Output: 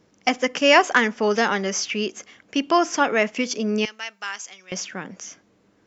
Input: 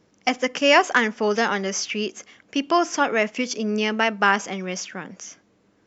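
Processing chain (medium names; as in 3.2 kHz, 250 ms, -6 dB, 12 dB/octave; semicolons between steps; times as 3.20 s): 3.85–4.72 s: differentiator; trim +1 dB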